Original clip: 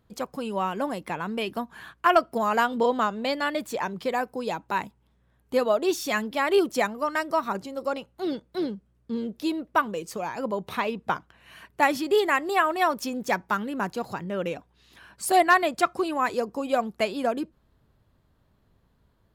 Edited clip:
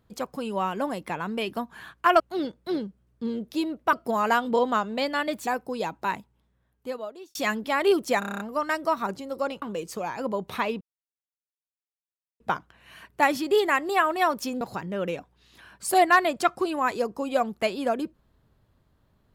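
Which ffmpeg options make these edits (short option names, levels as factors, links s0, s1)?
-filter_complex "[0:a]asplit=15[s0][s1][s2][s3][s4][s5][s6][s7][s8][s9][s10][s11][s12][s13][s14];[s0]atrim=end=2.202[s15];[s1]atrim=start=8.078:end=9.812[s16];[s2]atrim=start=2.198:end=3.742[s17];[s3]atrim=start=4.138:end=6.02,asetpts=PTS-STARTPTS,afade=t=out:st=0.522:d=1.36[s18];[s4]atrim=start=6.02:end=6.892,asetpts=PTS-STARTPTS,afade=t=in:d=0.004:c=hsin[s19];[s5]atrim=start=6.858:end=6.892[s20];[s6]atrim=start=6.858:end=6.892[s21];[s7]atrim=start=6.858:end=6.892[s22];[s8]atrim=start=6.858:end=6.892[s23];[s9]atrim=start=6.858:end=6.892[s24];[s10]atrim=start=6.858:end=6.892[s25];[s11]atrim=start=6.858:end=8.082[s26];[s12]atrim=start=9.808:end=11,asetpts=PTS-STARTPTS,afade=t=out:st=1.188:d=0.004:c=hsin,apad=pad_dur=1.59[s27];[s13]atrim=start=11:end=13.212,asetpts=PTS-STARTPTS,afade=t=in:d=0.004:c=hsin[s28];[s14]atrim=start=13.988[s29];[s15][s16]acrossfade=d=0.004:c1=hsin:c2=hsin[s30];[s30][s17]acrossfade=d=0.004:c1=hsin:c2=hsin[s31];[s18][s19]concat=n=2:v=0:a=1[s32];[s31][s32]acrossfade=d=0.004:c1=hsin:c2=hsin[s33];[s33][s20]acrossfade=d=0.004:c1=hsin:c2=hsin[s34];[s34][s21]acrossfade=d=0.004:c1=hsin:c2=hsin[s35];[s35][s22]acrossfade=d=0.004:c1=hsin:c2=hsin[s36];[s36][s23]acrossfade=d=0.004:c1=hsin:c2=hsin[s37];[s37][s24]acrossfade=d=0.004:c1=hsin:c2=hsin[s38];[s38][s25]acrossfade=d=0.004:c1=hsin:c2=hsin[s39];[s39][s26]acrossfade=d=0.004:c1=hsin:c2=hsin[s40];[s27][s28]concat=n=2:v=0:a=1[s41];[s40][s41]acrossfade=d=0.004:c1=hsin:c2=hsin[s42];[s42][s29]acrossfade=d=0.004:c1=hsin:c2=hsin"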